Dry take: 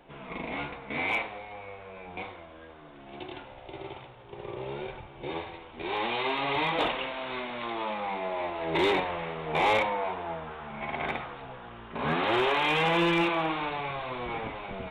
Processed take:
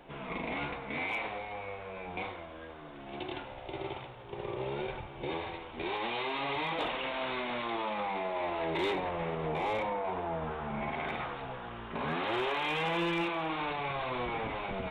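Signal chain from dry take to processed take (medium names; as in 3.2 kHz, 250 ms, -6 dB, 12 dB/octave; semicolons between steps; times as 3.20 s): 8.94–10.92 s: tilt shelf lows +4 dB; peak limiter -28.5 dBFS, peak gain reduction 11.5 dB; trim +2 dB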